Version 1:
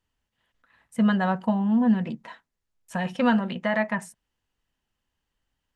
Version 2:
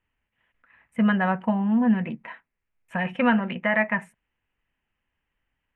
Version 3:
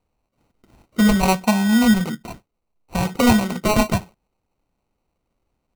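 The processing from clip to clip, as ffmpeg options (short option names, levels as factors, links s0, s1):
-af "highshelf=f=3400:t=q:w=3:g=-13"
-af "acrusher=samples=26:mix=1:aa=0.000001,volume=1.88"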